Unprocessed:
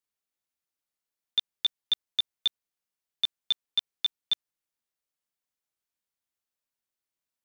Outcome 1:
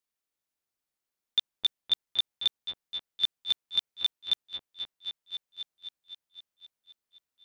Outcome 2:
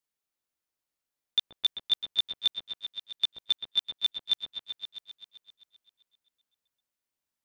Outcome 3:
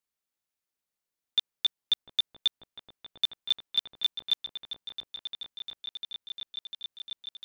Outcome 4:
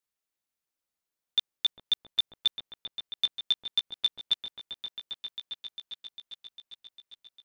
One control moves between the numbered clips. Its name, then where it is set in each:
repeats that get brighter, time: 0.259, 0.13, 0.699, 0.401 s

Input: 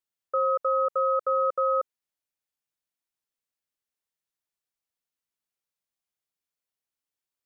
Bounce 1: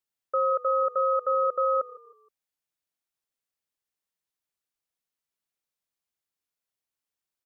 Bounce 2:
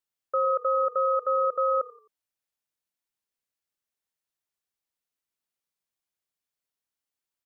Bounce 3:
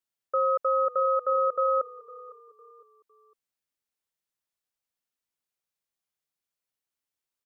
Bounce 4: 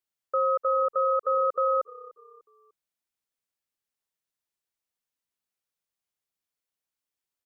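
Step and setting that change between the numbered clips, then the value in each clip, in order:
frequency-shifting echo, time: 157, 87, 506, 298 ms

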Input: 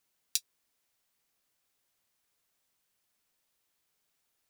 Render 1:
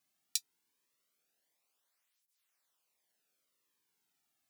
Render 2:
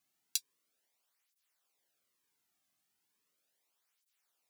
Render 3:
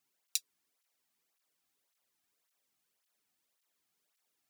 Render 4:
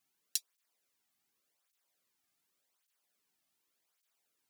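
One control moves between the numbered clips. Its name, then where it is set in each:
tape flanging out of phase, nulls at: 0.22, 0.37, 1.8, 0.87 Hz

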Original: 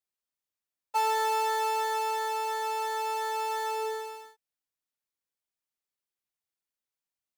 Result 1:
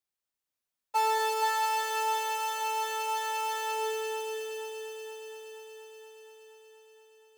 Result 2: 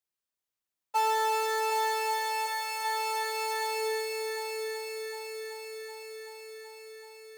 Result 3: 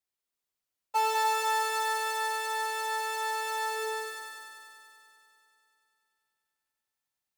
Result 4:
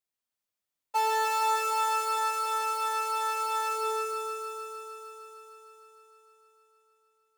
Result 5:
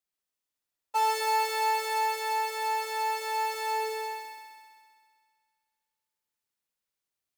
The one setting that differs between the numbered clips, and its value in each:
multi-head echo, time: 237, 380, 97, 153, 65 ms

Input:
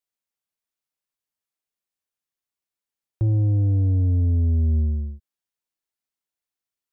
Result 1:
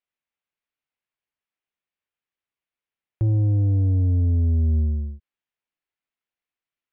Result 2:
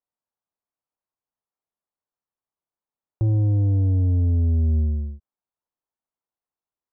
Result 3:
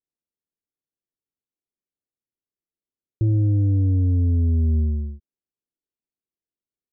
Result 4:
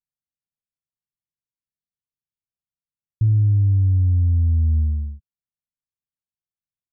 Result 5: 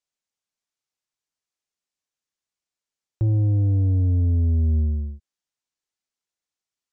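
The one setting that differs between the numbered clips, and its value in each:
synth low-pass, frequency: 2600, 1000, 380, 150, 6900 Hz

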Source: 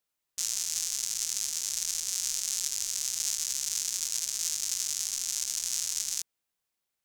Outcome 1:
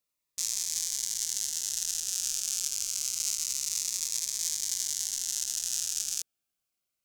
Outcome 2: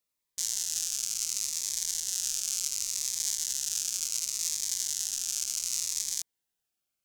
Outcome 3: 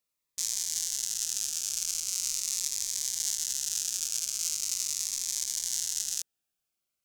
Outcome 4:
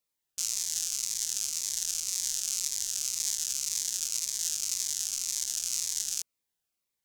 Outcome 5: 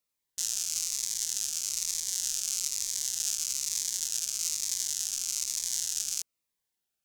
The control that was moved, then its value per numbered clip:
cascading phaser, rate: 0.27, 0.69, 0.41, 1.9, 1.1 Hz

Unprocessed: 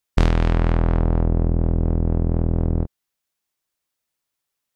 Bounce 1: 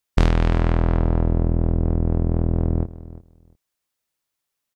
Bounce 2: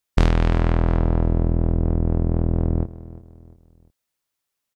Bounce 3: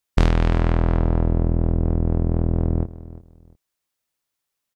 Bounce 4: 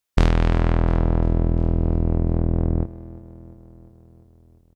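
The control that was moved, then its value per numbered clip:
feedback echo, feedback: 16, 38, 24, 63%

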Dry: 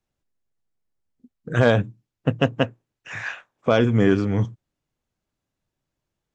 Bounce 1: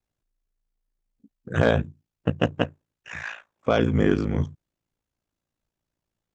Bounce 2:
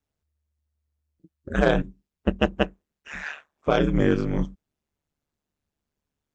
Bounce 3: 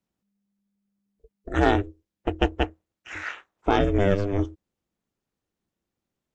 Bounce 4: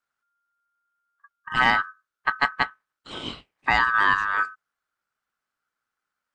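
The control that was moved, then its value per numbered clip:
ring modulator, frequency: 28, 74, 200, 1400 Hz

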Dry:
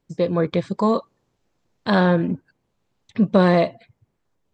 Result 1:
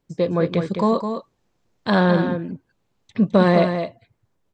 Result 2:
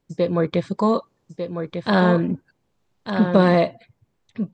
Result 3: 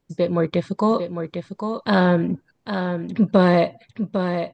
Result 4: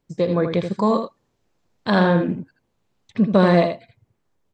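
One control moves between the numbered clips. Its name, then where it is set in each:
echo, time: 210, 1198, 802, 80 ms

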